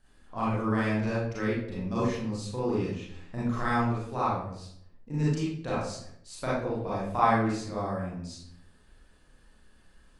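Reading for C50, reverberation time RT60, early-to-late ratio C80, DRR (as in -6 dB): -2.5 dB, 0.70 s, 4.0 dB, -9.0 dB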